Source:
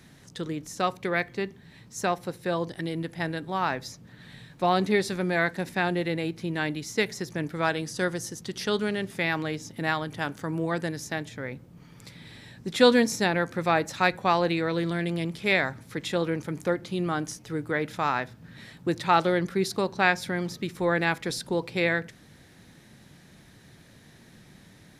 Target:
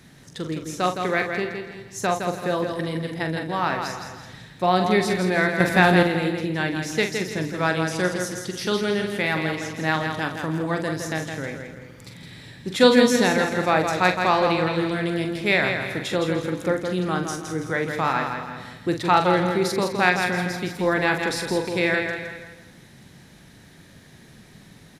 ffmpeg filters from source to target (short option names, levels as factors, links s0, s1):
-filter_complex "[0:a]asplit=2[s0][s1];[s1]aecho=0:1:164|328|492|656:0.501|0.17|0.0579|0.0197[s2];[s0][s2]amix=inputs=2:normalize=0,asettb=1/sr,asplit=3[s3][s4][s5];[s3]atrim=end=5.604[s6];[s4]atrim=start=5.6:end=6.03,asetpts=PTS-STARTPTS,afade=t=in:d=0.004:c=qsin,afade=t=out:st=0.426:d=0.004:c=qsin,acontrast=85[s7];[s5]atrim=start=6.026[s8];[s6][s7]acrossfade=d=0.004:c1=hsin:c2=qsin[s9];[s9][s8]acrossfade=d=0.004:c1=qsin:c2=hsin,asplit=2[s10][s11];[s11]aecho=0:1:44|296|380:0.422|0.133|0.15[s12];[s10][s12]amix=inputs=2:normalize=0,volume=1.33"